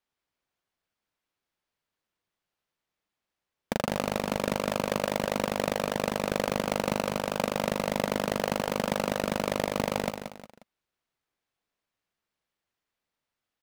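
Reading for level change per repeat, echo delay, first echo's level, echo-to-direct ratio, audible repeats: −8.5 dB, 179 ms, −8.0 dB, −7.5 dB, 3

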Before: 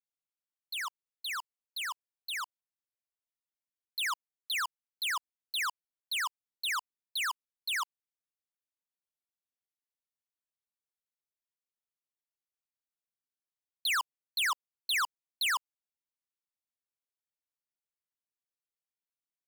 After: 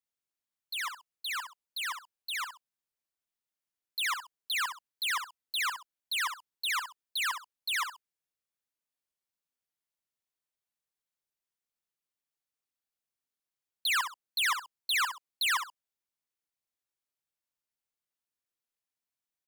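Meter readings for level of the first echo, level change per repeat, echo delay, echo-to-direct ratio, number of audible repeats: −8.0 dB, −12.0 dB, 65 ms, −7.5 dB, 2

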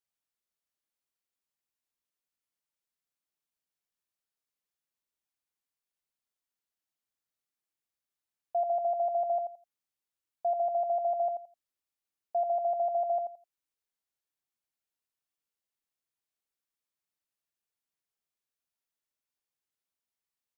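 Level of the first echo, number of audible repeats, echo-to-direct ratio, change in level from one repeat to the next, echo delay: −6.0 dB, 3, −6.0 dB, −14.0 dB, 85 ms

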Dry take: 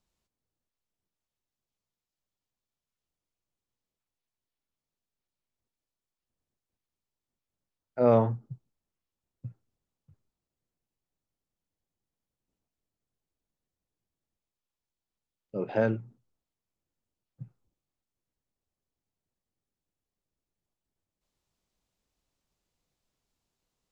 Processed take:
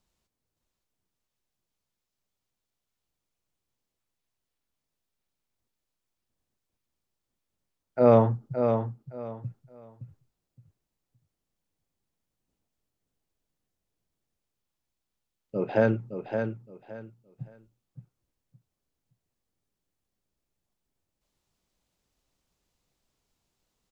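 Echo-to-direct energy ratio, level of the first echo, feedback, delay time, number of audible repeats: −7.0 dB, −7.0 dB, 23%, 567 ms, 3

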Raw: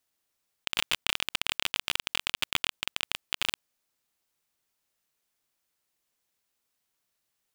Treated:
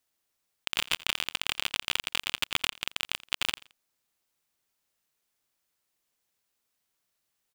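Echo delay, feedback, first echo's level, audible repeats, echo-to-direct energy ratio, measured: 85 ms, 31%, −20.5 dB, 2, −20.0 dB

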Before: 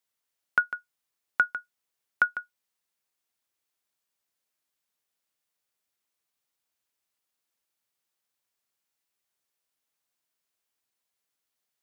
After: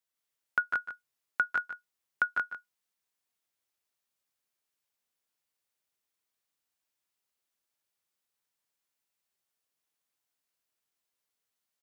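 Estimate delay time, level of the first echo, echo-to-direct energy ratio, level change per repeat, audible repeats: 147 ms, −10.0 dB, −0.5 dB, repeats not evenly spaced, 2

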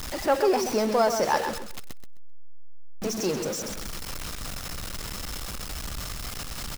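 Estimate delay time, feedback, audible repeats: 130 ms, 21%, 2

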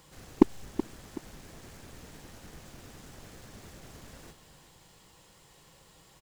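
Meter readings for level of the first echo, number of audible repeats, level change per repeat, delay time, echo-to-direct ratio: −12.0 dB, 2, −9.0 dB, 376 ms, −11.5 dB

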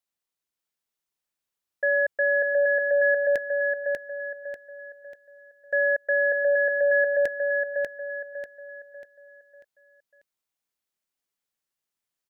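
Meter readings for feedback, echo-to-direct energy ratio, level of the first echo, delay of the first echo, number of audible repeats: 38%, −3.0 dB, −3.5 dB, 592 ms, 4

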